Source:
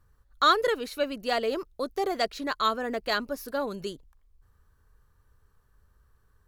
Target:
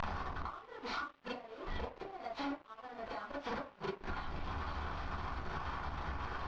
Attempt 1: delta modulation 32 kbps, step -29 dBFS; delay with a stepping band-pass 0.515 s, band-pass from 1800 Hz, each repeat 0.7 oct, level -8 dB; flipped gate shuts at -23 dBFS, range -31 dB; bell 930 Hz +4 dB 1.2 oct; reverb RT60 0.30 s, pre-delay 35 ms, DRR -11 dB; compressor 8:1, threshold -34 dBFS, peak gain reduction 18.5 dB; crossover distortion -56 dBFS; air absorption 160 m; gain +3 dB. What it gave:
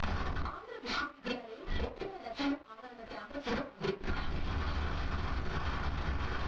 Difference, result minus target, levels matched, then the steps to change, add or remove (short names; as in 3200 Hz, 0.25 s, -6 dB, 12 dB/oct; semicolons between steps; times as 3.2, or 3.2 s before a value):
compressor: peak gain reduction -7 dB; 1000 Hz band -4.0 dB
change: bell 930 Hz +13.5 dB 1.2 oct; change: compressor 8:1, threshold -40 dBFS, peak gain reduction 25.5 dB